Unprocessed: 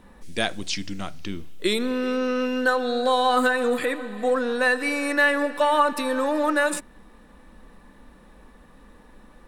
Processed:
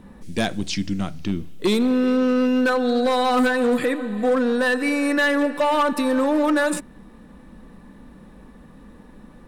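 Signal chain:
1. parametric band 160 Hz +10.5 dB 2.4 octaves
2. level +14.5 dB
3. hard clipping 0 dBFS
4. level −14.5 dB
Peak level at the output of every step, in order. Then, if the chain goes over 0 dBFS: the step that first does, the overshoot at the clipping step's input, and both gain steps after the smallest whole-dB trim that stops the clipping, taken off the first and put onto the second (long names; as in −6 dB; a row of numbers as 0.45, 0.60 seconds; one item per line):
−5.5, +9.0, 0.0, −14.5 dBFS
step 2, 9.0 dB
step 2 +5.5 dB, step 4 −5.5 dB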